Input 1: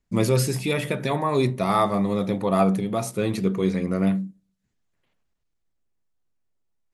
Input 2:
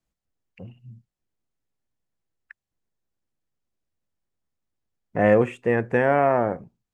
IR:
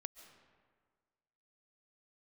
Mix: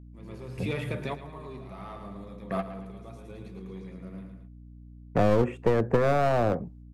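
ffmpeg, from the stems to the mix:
-filter_complex "[0:a]acrossover=split=3400[s0][s1];[s1]acompressor=threshold=0.00447:ratio=4:attack=1:release=60[s2];[s0][s2]amix=inputs=2:normalize=0,bandreject=f=45.67:t=h:w=4,bandreject=f=91.34:t=h:w=4,bandreject=f=137.01:t=h:w=4,bandreject=f=182.68:t=h:w=4,bandreject=f=228.35:t=h:w=4,bandreject=f=274.02:t=h:w=4,bandreject=f=319.69:t=h:w=4,bandreject=f=365.36:t=h:w=4,bandreject=f=411.03:t=h:w=4,bandreject=f=456.7:t=h:w=4,bandreject=f=502.37:t=h:w=4,bandreject=f=548.04:t=h:w=4,bandreject=f=593.71:t=h:w=4,bandreject=f=639.38:t=h:w=4,bandreject=f=685.05:t=h:w=4,bandreject=f=730.72:t=h:w=4,bandreject=f=776.39:t=h:w=4,bandreject=f=822.06:t=h:w=4,bandreject=f=867.73:t=h:w=4,bandreject=f=913.4:t=h:w=4,bandreject=f=959.07:t=h:w=4,bandreject=f=1004.74:t=h:w=4,bandreject=f=1050.41:t=h:w=4,bandreject=f=1096.08:t=h:w=4,bandreject=f=1141.75:t=h:w=4,bandreject=f=1187.42:t=h:w=4,bandreject=f=1233.09:t=h:w=4,bandreject=f=1278.76:t=h:w=4,bandreject=f=1324.43:t=h:w=4,bandreject=f=1370.1:t=h:w=4,bandreject=f=1415.77:t=h:w=4,bandreject=f=1461.44:t=h:w=4,bandreject=f=1507.11:t=h:w=4,bandreject=f=1552.78:t=h:w=4,bandreject=f=1598.45:t=h:w=4,bandreject=f=1644.12:t=h:w=4,bandreject=f=1689.79:t=h:w=4,bandreject=f=1735.46:t=h:w=4,bandreject=f=1781.13:t=h:w=4,asoftclip=type=tanh:threshold=0.158,volume=0.473,asplit=3[s3][s4][s5];[s4]volume=0.119[s6];[s5]volume=0.224[s7];[1:a]tiltshelf=f=1400:g=6,acrossover=split=280|1600[s8][s9][s10];[s8]acompressor=threshold=0.0398:ratio=4[s11];[s9]acompressor=threshold=0.178:ratio=4[s12];[s10]acompressor=threshold=0.00398:ratio=4[s13];[s11][s12][s13]amix=inputs=3:normalize=0,aeval=exprs='clip(val(0),-1,0.0708)':c=same,volume=1.19,asplit=2[s14][s15];[s15]apad=whole_len=306053[s16];[s3][s16]sidechaingate=range=0.0282:threshold=0.00141:ratio=16:detection=peak[s17];[2:a]atrim=start_sample=2205[s18];[s6][s18]afir=irnorm=-1:irlink=0[s19];[s7]aecho=0:1:111|222|333|444|555|666|777:1|0.48|0.23|0.111|0.0531|0.0255|0.0122[s20];[s17][s14][s19][s20]amix=inputs=4:normalize=0,agate=range=0.1:threshold=0.002:ratio=16:detection=peak,acrossover=split=260|3000[s21][s22][s23];[s22]acompressor=threshold=0.0891:ratio=6[s24];[s21][s24][s23]amix=inputs=3:normalize=0,aeval=exprs='val(0)+0.00501*(sin(2*PI*60*n/s)+sin(2*PI*2*60*n/s)/2+sin(2*PI*3*60*n/s)/3+sin(2*PI*4*60*n/s)/4+sin(2*PI*5*60*n/s)/5)':c=same"

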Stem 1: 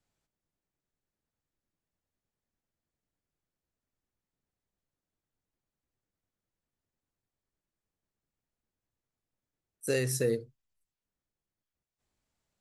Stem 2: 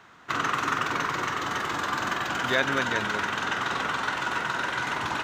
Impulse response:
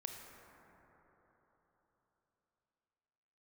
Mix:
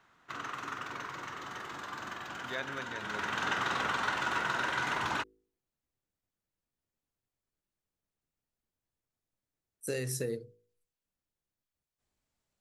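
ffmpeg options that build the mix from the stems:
-filter_complex "[0:a]acompressor=threshold=0.0355:ratio=6,volume=0.841[s0];[1:a]volume=0.473,afade=t=in:st=2.97:d=0.49:silence=0.334965,asplit=2[s1][s2];[s2]volume=0.596[s3];[2:a]atrim=start_sample=2205[s4];[s3][s4]afir=irnorm=-1:irlink=0[s5];[s0][s1][s5]amix=inputs=3:normalize=0,bandreject=f=53.74:t=h:w=4,bandreject=f=107.48:t=h:w=4,bandreject=f=161.22:t=h:w=4,bandreject=f=214.96:t=h:w=4,bandreject=f=268.7:t=h:w=4,bandreject=f=322.44:t=h:w=4,bandreject=f=376.18:t=h:w=4,bandreject=f=429.92:t=h:w=4,bandreject=f=483.66:t=h:w=4"

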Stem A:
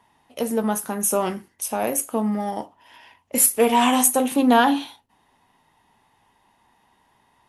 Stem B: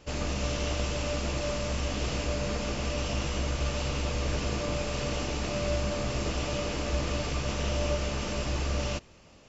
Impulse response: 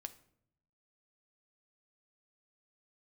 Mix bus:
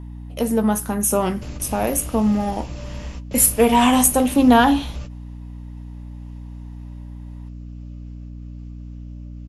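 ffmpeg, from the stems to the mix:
-filter_complex "[0:a]volume=1.19,asplit=2[s0][s1];[1:a]acompressor=threshold=0.0141:ratio=5,adelay=1350,volume=1.06,asplit=2[s2][s3];[s3]volume=0.0891[s4];[s1]apad=whole_len=477671[s5];[s2][s5]sidechaingate=range=0.0224:threshold=0.00251:ratio=16:detection=peak[s6];[2:a]atrim=start_sample=2205[s7];[s4][s7]afir=irnorm=-1:irlink=0[s8];[s0][s6][s8]amix=inputs=3:normalize=0,bass=f=250:g=6,treble=f=4000:g=0,aeval=exprs='val(0)+0.0224*(sin(2*PI*60*n/s)+sin(2*PI*2*60*n/s)/2+sin(2*PI*3*60*n/s)/3+sin(2*PI*4*60*n/s)/4+sin(2*PI*5*60*n/s)/5)':c=same"

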